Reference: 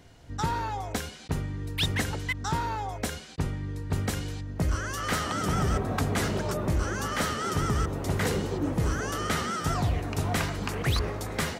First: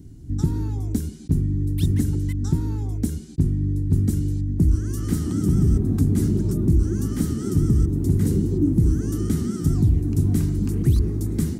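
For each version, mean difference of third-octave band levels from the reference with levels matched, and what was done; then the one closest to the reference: 12.5 dB: FFT filter 340 Hz 0 dB, 550 Hz -28 dB, 2.8 kHz -27 dB, 9.2 kHz -9 dB; in parallel at 0 dB: compression, threshold -34 dBFS, peak gain reduction 11.5 dB; on the sum: trim +7 dB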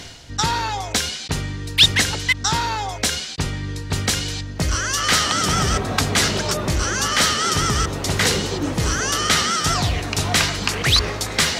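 4.0 dB: peaking EQ 4.7 kHz +14 dB 2.6 oct; reverse; upward compressor, threshold -27 dBFS; reverse; trim +4.5 dB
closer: second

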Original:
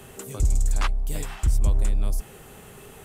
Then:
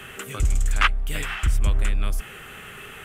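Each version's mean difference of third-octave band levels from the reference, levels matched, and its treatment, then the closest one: 4.5 dB: high-order bell 2 kHz +13 dB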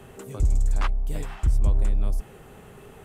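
3.5 dB: treble shelf 3.2 kHz -11 dB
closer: second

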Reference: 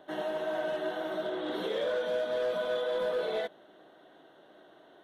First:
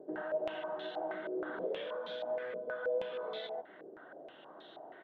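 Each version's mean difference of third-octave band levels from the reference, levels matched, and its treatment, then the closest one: 6.5 dB: high-pass 89 Hz 12 dB/octave; delay 142 ms -8 dB; compression 4:1, threshold -42 dBFS, peak gain reduction 13.5 dB; step-sequenced low-pass 6.3 Hz 430–3800 Hz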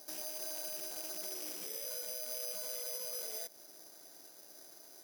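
12.5 dB: rattle on loud lows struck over -46 dBFS, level -31 dBFS; compression, threshold -37 dBFS, peak gain reduction 9.5 dB; peak limiter -36 dBFS, peak gain reduction 7.5 dB; careless resampling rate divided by 8×, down none, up zero stuff; trim -7.5 dB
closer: first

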